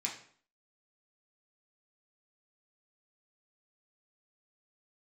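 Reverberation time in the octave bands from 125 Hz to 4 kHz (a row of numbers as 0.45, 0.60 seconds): 0.55, 0.60, 0.50, 0.50, 0.50, 0.45 seconds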